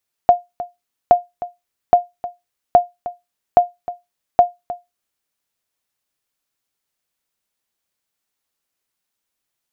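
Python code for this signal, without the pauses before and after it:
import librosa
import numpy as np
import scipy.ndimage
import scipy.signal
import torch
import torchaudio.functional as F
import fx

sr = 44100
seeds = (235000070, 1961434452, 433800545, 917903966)

y = fx.sonar_ping(sr, hz=707.0, decay_s=0.19, every_s=0.82, pings=6, echo_s=0.31, echo_db=-16.0, level_db=-1.0)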